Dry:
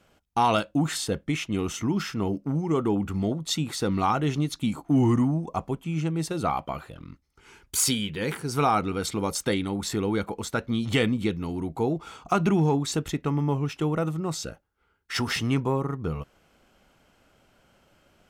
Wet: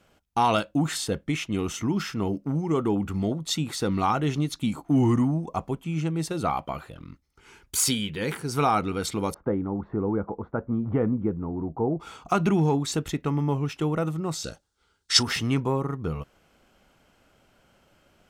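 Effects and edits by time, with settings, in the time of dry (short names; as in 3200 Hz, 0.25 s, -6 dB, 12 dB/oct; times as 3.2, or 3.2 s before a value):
9.34–12 LPF 1200 Hz 24 dB/oct
14.44–15.23 band shelf 5600 Hz +14 dB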